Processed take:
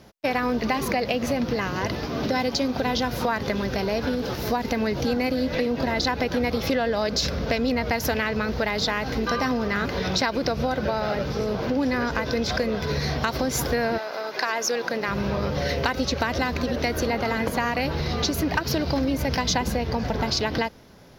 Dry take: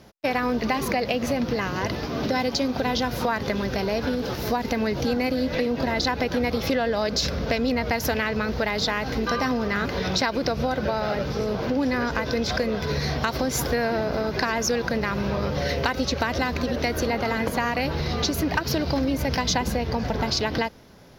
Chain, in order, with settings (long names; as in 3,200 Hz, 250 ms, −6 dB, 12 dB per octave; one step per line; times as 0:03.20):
0:13.97–0:15.07: high-pass filter 860 Hz → 250 Hz 12 dB per octave